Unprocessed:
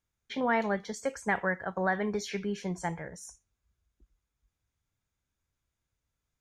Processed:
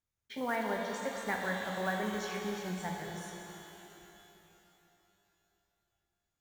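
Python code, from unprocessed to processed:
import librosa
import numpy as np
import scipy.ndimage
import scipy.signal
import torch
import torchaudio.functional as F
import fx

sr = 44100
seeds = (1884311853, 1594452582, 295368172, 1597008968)

y = fx.block_float(x, sr, bits=5)
y = fx.rev_shimmer(y, sr, seeds[0], rt60_s=3.3, semitones=12, shimmer_db=-8, drr_db=1.0)
y = y * librosa.db_to_amplitude(-7.0)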